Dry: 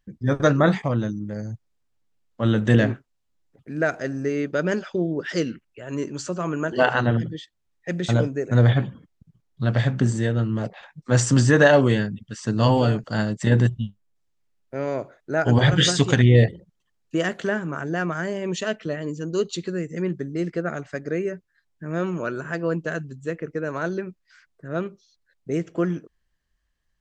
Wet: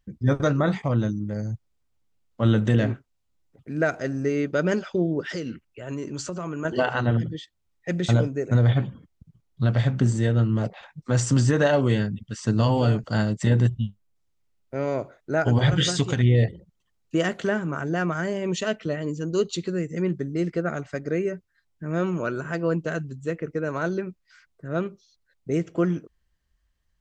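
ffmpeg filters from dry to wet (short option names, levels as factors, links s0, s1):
-filter_complex "[0:a]asettb=1/sr,asplit=3[s0][s1][s2];[s0]atrim=end=5.254[s3];[s1]atrim=start=5.25:end=6.65,asetpts=PTS-STARTPTS,afade=t=in:d=0.004:c=qsin,afade=t=out:st=1.396:d=0.004:c=qsin,acompressor=threshold=0.0447:ratio=6:attack=3.2:release=140:knee=1:detection=peak[s4];[s2]atrim=start=6.646[s5];[s3][s4]acrossfade=d=0.004:c1=hsin:c2=qsin[s6];[s6][s5]acrossfade=d=0.004:c1=qsin:c2=hsin,bandreject=f=1700:w=15,alimiter=limit=0.282:level=0:latency=1:release=407,equalizer=f=64:t=o:w=1.6:g=6"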